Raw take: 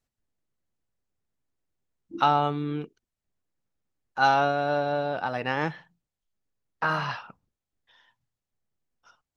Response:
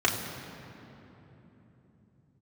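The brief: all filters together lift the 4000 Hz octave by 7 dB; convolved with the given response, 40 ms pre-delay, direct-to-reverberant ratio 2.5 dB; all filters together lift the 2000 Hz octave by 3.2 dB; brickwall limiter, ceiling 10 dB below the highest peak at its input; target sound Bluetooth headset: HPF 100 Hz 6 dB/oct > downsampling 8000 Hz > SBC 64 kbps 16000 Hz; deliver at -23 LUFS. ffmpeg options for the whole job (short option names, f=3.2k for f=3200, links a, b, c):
-filter_complex "[0:a]equalizer=f=2k:t=o:g=3.5,equalizer=f=4k:t=o:g=7.5,alimiter=limit=-16dB:level=0:latency=1,asplit=2[a][b];[1:a]atrim=start_sample=2205,adelay=40[c];[b][c]afir=irnorm=-1:irlink=0,volume=-16dB[d];[a][d]amix=inputs=2:normalize=0,highpass=f=100:p=1,aresample=8000,aresample=44100,volume=5dB" -ar 16000 -c:a sbc -b:a 64k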